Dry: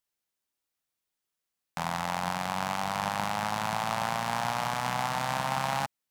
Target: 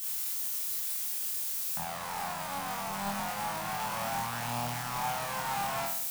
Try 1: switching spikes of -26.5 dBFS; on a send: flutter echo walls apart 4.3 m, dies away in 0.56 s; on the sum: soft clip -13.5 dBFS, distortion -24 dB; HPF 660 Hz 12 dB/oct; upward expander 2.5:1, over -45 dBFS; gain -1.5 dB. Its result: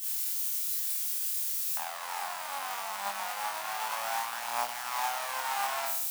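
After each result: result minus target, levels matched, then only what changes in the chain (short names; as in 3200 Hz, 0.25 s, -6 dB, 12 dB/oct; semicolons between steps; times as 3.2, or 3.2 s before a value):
soft clip: distortion -13 dB; 500 Hz band -3.5 dB
change: soft clip -25 dBFS, distortion -11 dB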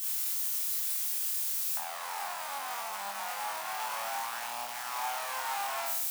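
500 Hz band -4.0 dB
remove: HPF 660 Hz 12 dB/oct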